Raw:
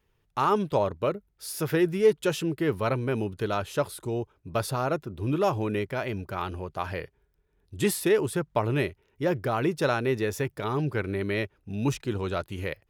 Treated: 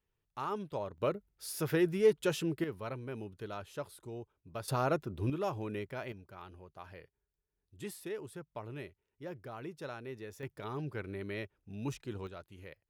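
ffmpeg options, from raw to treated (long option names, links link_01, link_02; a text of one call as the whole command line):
ffmpeg -i in.wav -af "asetnsamples=nb_out_samples=441:pad=0,asendcmd='0.98 volume volume -5.5dB;2.64 volume volume -14dB;4.68 volume volume -3.5dB;5.3 volume volume -10.5dB;6.12 volume volume -18dB;10.43 volume volume -11.5dB;12.27 volume volume -18dB',volume=-13.5dB" out.wav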